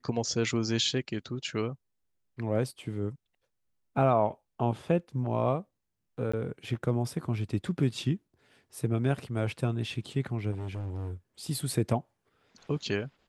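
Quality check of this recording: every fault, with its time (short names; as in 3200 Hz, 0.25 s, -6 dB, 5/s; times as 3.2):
6.32–6.33 gap 15 ms
10.51–11.13 clipped -32.5 dBFS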